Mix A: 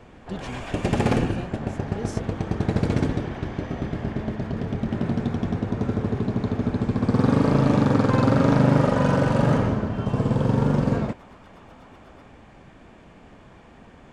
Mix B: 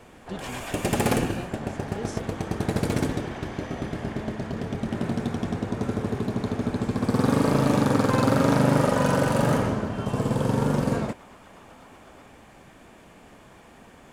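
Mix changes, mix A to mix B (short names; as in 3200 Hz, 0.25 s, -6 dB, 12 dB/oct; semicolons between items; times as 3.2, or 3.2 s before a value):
first sound: remove air absorption 93 m; master: add low shelf 200 Hz -6 dB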